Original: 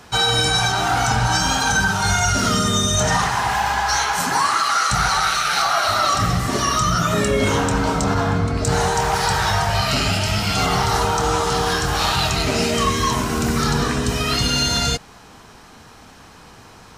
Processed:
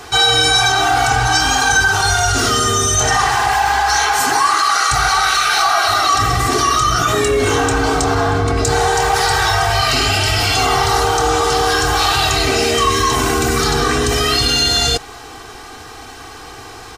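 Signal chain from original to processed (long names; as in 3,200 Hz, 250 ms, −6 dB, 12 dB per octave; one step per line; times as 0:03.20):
low-shelf EQ 220 Hz −4.5 dB
comb filter 2.6 ms, depth 82%
in parallel at −1.5 dB: compressor whose output falls as the input rises −24 dBFS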